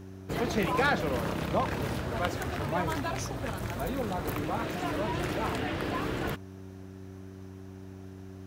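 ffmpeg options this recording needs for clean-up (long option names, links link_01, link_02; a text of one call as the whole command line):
ffmpeg -i in.wav -af "bandreject=frequency=95.1:width_type=h:width=4,bandreject=frequency=190.2:width_type=h:width=4,bandreject=frequency=285.3:width_type=h:width=4,bandreject=frequency=380.4:width_type=h:width=4" out.wav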